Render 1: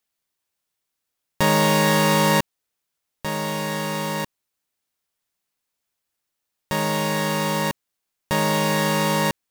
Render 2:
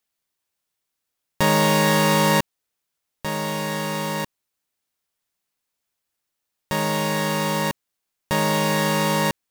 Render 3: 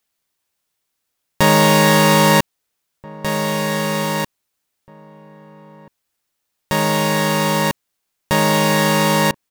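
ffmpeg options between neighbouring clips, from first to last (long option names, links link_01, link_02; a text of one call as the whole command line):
ffmpeg -i in.wav -af anull out.wav
ffmpeg -i in.wav -filter_complex "[0:a]asplit=2[link_01][link_02];[link_02]adelay=1633,volume=-20dB,highshelf=frequency=4000:gain=-36.7[link_03];[link_01][link_03]amix=inputs=2:normalize=0,volume=5.5dB" out.wav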